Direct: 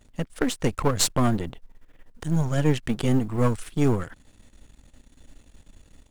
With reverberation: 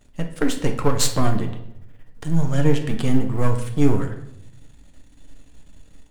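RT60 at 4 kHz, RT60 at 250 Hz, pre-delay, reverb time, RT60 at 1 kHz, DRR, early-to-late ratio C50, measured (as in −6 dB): 0.55 s, 1.0 s, 6 ms, 0.80 s, 0.70 s, 3.5 dB, 9.0 dB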